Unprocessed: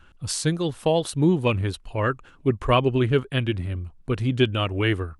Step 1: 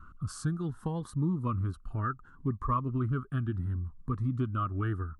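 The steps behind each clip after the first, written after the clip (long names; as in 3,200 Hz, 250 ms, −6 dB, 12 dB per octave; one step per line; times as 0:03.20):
drawn EQ curve 240 Hz 0 dB, 530 Hz −14 dB, 860 Hz −8 dB, 1,200 Hz +10 dB, 2,400 Hz −23 dB, 4,400 Hz −18 dB, 8,700 Hz −15 dB
downward compressor 2 to 1, threshold −38 dBFS, peak gain reduction 13.5 dB
phaser whose notches keep moving one way rising 0.69 Hz
level +3 dB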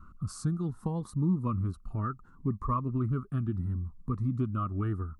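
thirty-one-band graphic EQ 200 Hz +6 dB, 1,600 Hz −11 dB, 3,150 Hz −9 dB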